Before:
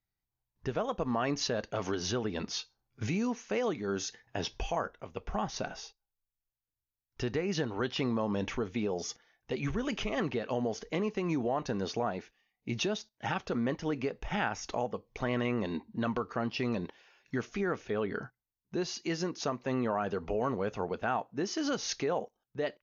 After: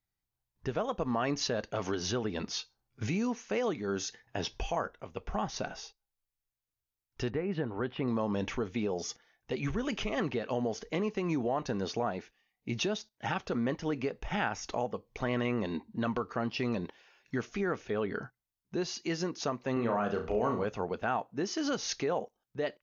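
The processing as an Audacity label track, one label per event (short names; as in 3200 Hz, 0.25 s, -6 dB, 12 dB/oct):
7.300000	8.080000	air absorption 490 m
19.730000	20.650000	flutter echo walls apart 5.8 m, dies away in 0.35 s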